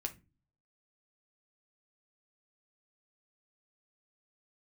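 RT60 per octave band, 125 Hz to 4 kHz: 0.70, 0.55, 0.35, 0.25, 0.25, 0.20 seconds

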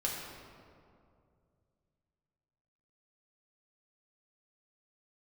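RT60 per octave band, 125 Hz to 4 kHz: 3.4, 2.7, 2.6, 2.2, 1.6, 1.2 seconds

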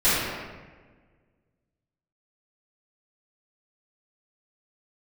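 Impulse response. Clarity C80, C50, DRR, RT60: 0.5 dB, −2.5 dB, −16.5 dB, 1.4 s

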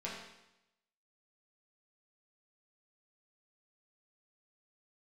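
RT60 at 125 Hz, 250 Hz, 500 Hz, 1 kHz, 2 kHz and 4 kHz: 0.90, 0.90, 0.85, 0.90, 0.90, 0.90 seconds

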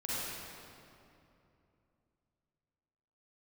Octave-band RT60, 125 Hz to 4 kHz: 3.6, 3.4, 3.0, 2.6, 2.2, 1.8 seconds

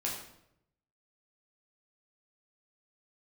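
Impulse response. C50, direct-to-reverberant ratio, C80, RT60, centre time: 3.5 dB, −4.0 dB, 7.0 dB, 0.80 s, 42 ms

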